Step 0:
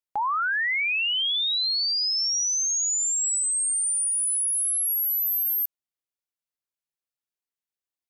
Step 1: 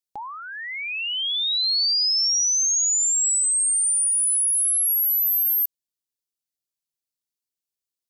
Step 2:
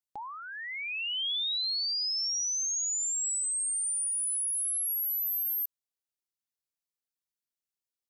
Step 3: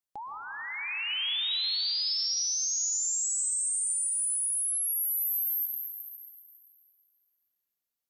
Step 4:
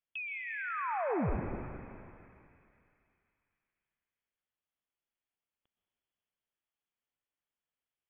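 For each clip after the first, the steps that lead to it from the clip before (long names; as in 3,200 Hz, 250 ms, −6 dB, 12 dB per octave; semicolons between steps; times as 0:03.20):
drawn EQ curve 370 Hz 0 dB, 1,400 Hz −12 dB, 4,500 Hz +4 dB
brickwall limiter −22 dBFS, peak gain reduction 4 dB; level −6 dB
dense smooth reverb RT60 3.8 s, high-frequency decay 0.6×, pre-delay 105 ms, DRR 2.5 dB
voice inversion scrambler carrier 3,400 Hz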